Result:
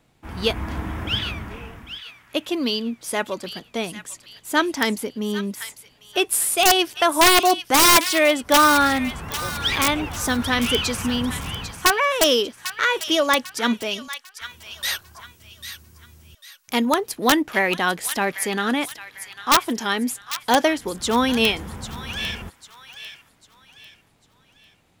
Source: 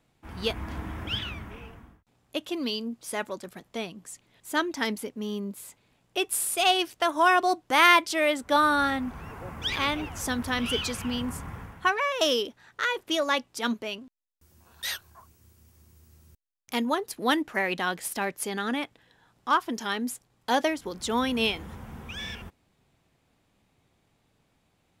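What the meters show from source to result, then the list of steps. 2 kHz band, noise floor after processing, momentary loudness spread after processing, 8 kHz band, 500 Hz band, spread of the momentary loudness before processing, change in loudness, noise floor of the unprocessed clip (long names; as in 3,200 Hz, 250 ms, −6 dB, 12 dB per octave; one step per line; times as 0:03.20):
+5.5 dB, −59 dBFS, 20 LU, +11.5 dB, +7.0 dB, 16 LU, +7.0 dB, −70 dBFS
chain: wrap-around overflow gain 13.5 dB
delay with a high-pass on its return 797 ms, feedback 37%, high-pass 1,600 Hz, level −10 dB
level +7 dB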